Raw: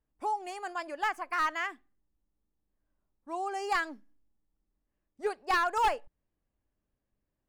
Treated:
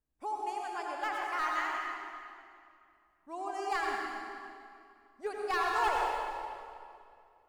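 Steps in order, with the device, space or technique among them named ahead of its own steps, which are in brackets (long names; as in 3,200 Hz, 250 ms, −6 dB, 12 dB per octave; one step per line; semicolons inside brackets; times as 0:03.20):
stairwell (convolution reverb RT60 2.4 s, pre-delay 75 ms, DRR −2 dB)
level −5.5 dB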